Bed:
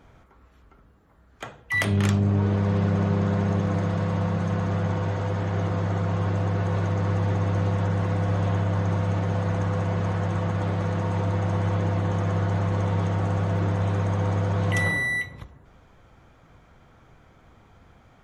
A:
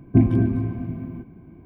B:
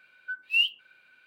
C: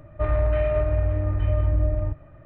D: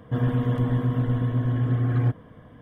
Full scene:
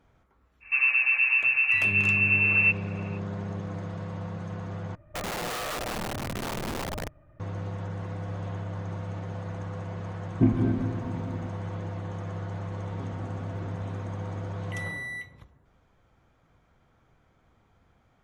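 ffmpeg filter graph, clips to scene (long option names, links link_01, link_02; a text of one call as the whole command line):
ffmpeg -i bed.wav -i cue0.wav -i cue1.wav -i cue2.wav -i cue3.wav -filter_complex "[1:a]asplit=2[link_01][link_02];[0:a]volume=-10.5dB[link_03];[4:a]lowpass=frequency=2400:width_type=q:width=0.5098,lowpass=frequency=2400:width_type=q:width=0.6013,lowpass=frequency=2400:width_type=q:width=0.9,lowpass=frequency=2400:width_type=q:width=2.563,afreqshift=-2800[link_04];[3:a]aeval=exprs='(mod(8.91*val(0)+1,2)-1)/8.91':channel_layout=same[link_05];[link_01]equalizer=frequency=77:width_type=o:width=0.77:gain=-4.5[link_06];[link_02]acompressor=threshold=-39dB:ratio=6:attack=3.2:release=140:knee=1:detection=peak[link_07];[link_03]asplit=2[link_08][link_09];[link_08]atrim=end=4.954[link_10];[link_05]atrim=end=2.45,asetpts=PTS-STARTPTS,volume=-9dB[link_11];[link_09]atrim=start=7.396[link_12];[link_04]atrim=end=2.61,asetpts=PTS-STARTPTS,volume=-0.5dB,afade=type=in:duration=0.05,afade=type=out:start_time=2.56:duration=0.05,adelay=600[link_13];[link_06]atrim=end=1.65,asetpts=PTS-STARTPTS,volume=-5dB,afade=type=in:duration=0.004:curve=hsin,afade=type=out:start_time=1.646:duration=0.004:curve=hsin,adelay=452466S[link_14];[link_07]atrim=end=1.65,asetpts=PTS-STARTPTS,volume=-2.5dB,afade=type=in:duration=0.004:curve=hsin,afade=type=out:start_time=1.646:duration=0.004:curve=hsin,adelay=12860[link_15];[link_10][link_11]acrossfade=duration=0.004:curve1=hsin:curve2=hsin[link_16];[link_16][link_12]acrossfade=duration=0.004:curve1=hsin:curve2=hsin[link_17];[link_17][link_13][link_14][link_15]amix=inputs=4:normalize=0" out.wav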